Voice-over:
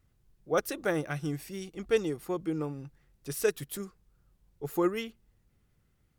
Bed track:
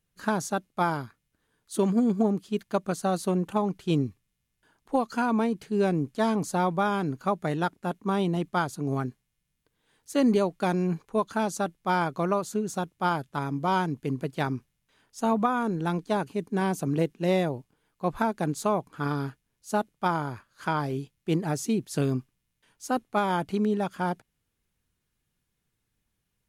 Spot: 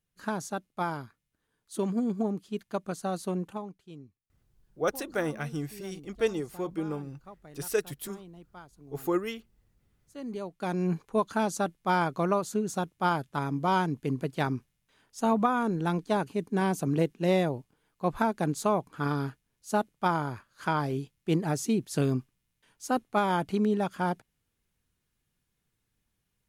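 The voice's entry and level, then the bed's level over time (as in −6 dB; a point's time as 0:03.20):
4.30 s, −0.5 dB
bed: 0:03.42 −5.5 dB
0:03.90 −22 dB
0:10.03 −22 dB
0:10.89 −0.5 dB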